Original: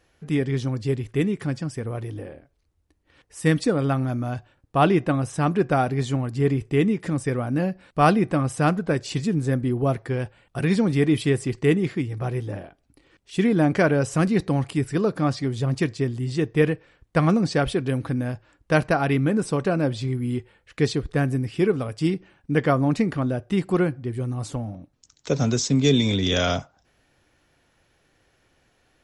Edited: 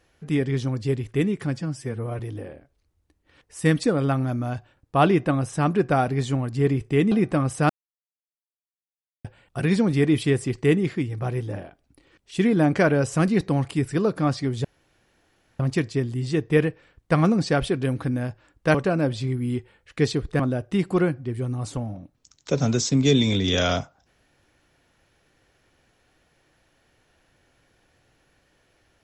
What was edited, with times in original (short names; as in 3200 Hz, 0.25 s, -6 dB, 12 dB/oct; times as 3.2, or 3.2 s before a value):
1.61–2 stretch 1.5×
6.92–8.11 cut
8.69–10.24 mute
15.64 insert room tone 0.95 s
18.79–19.55 cut
21.2–23.18 cut